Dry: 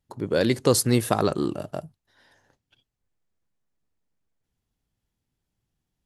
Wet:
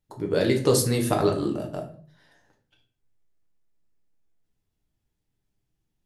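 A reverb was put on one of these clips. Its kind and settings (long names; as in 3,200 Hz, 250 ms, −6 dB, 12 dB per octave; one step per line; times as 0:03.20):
rectangular room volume 42 cubic metres, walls mixed, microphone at 0.56 metres
level −3.5 dB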